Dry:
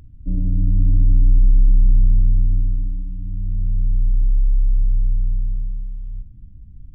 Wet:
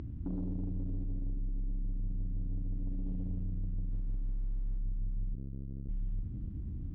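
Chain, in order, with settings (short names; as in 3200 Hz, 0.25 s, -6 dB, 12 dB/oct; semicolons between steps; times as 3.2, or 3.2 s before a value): 3.9–4.78 zero-crossing step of -36.5 dBFS; HPF 41 Hz 12 dB/oct; bell 320 Hz +10 dB 1.3 oct; notches 50/100/150 Hz; compressor, threshold -27 dBFS, peak gain reduction 13.5 dB; limiter -31 dBFS, peak gain reduction 11.5 dB; sample leveller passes 1; air absorption 140 m; 5.34–5.89 core saturation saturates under 130 Hz; gain +1 dB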